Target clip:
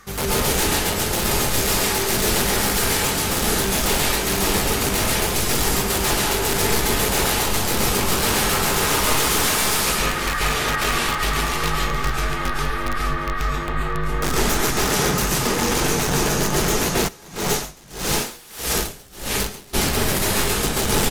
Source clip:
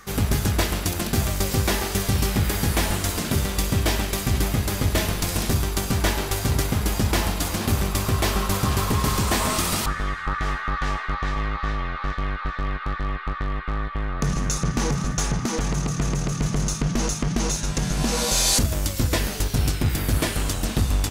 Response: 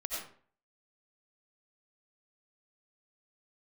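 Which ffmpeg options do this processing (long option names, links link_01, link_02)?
-filter_complex "[0:a]aeval=exprs='(mod(8.41*val(0)+1,2)-1)/8.41':channel_layout=same,aecho=1:1:626:0.15[link_01];[1:a]atrim=start_sample=2205,asetrate=29106,aresample=44100[link_02];[link_01][link_02]afir=irnorm=-1:irlink=0,asplit=3[link_03][link_04][link_05];[link_03]afade=type=out:start_time=17.07:duration=0.02[link_06];[link_04]aeval=exprs='val(0)*pow(10,-25*(0.5-0.5*cos(2*PI*1.6*n/s))/20)':channel_layout=same,afade=type=in:start_time=17.07:duration=0.02,afade=type=out:start_time=19.73:duration=0.02[link_07];[link_05]afade=type=in:start_time=19.73:duration=0.02[link_08];[link_06][link_07][link_08]amix=inputs=3:normalize=0"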